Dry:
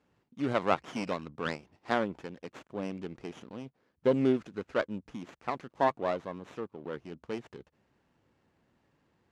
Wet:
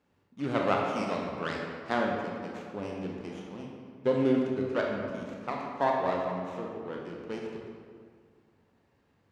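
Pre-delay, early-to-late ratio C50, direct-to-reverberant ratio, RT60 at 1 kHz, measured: 24 ms, 1.0 dB, -1.0 dB, 2.0 s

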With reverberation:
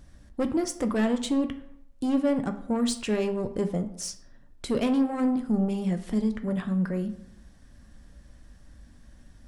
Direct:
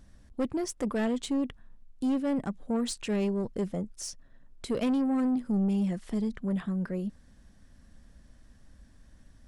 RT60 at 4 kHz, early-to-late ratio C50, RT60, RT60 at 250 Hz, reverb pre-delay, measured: 0.45 s, 12.5 dB, 0.75 s, 0.70 s, 4 ms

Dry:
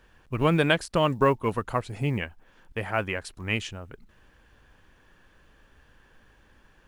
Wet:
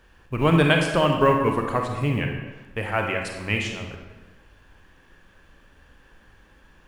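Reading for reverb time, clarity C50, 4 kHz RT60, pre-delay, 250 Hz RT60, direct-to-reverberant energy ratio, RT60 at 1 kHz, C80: 1.2 s, 4.0 dB, 0.90 s, 31 ms, 1.2 s, 2.0 dB, 1.2 s, 6.0 dB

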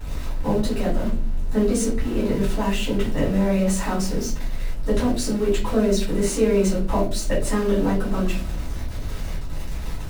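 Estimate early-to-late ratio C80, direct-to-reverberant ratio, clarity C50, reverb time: 13.0 dB, -8.5 dB, 6.5 dB, 0.45 s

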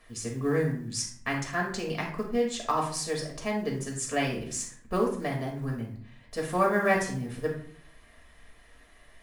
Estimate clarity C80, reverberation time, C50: 10.0 dB, 0.55 s, 5.5 dB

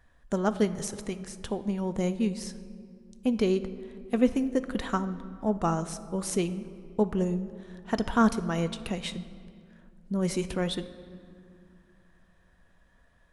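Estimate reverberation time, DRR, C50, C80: 2.2 s, 11.0 dB, 13.5 dB, 15.0 dB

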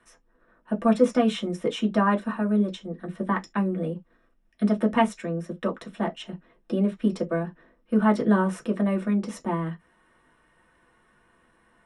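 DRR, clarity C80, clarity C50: -0.5 dB, 40.0 dB, 25.5 dB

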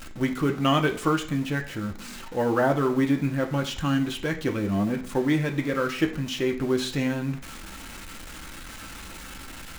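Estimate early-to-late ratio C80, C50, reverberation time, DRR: 16.0 dB, 12.0 dB, 0.50 s, 3.0 dB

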